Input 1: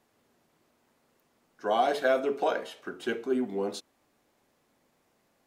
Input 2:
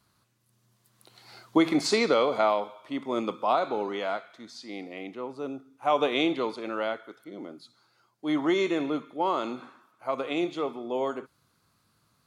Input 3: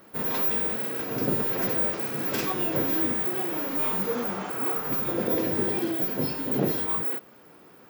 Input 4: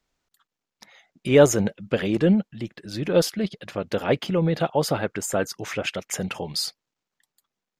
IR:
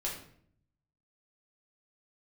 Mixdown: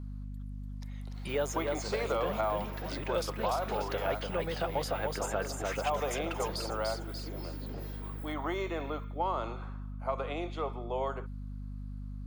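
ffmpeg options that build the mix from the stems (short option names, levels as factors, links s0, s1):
-filter_complex "[0:a]adelay=400,volume=0.158[s0];[1:a]highpass=340,highshelf=f=2300:g=-10.5,volume=1.19[s1];[2:a]adelay=1150,volume=0.168,asplit=2[s2][s3];[s3]volume=0.126[s4];[3:a]dynaudnorm=f=120:g=17:m=3.76,volume=0.316,asplit=2[s5][s6];[s6]volume=0.531[s7];[s4][s7]amix=inputs=2:normalize=0,aecho=0:1:293|586|879|1172:1|0.29|0.0841|0.0244[s8];[s0][s1][s2][s5][s8]amix=inputs=5:normalize=0,acrossover=split=520|1300|7300[s9][s10][s11][s12];[s9]acompressor=threshold=0.00501:ratio=4[s13];[s10]acompressor=threshold=0.0282:ratio=4[s14];[s11]acompressor=threshold=0.00794:ratio=4[s15];[s12]acompressor=threshold=0.00316:ratio=4[s16];[s13][s14][s15][s16]amix=inputs=4:normalize=0,aeval=exprs='val(0)+0.0112*(sin(2*PI*50*n/s)+sin(2*PI*2*50*n/s)/2+sin(2*PI*3*50*n/s)/3+sin(2*PI*4*50*n/s)/4+sin(2*PI*5*50*n/s)/5)':c=same"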